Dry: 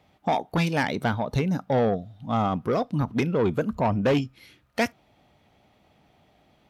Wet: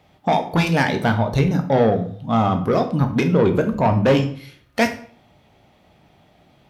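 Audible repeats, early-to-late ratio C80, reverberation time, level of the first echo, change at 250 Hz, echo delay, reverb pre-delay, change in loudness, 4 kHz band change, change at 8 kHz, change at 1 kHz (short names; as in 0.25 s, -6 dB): none, 15.0 dB, 0.50 s, none, +6.5 dB, none, 12 ms, +6.5 dB, +6.0 dB, n/a, +6.0 dB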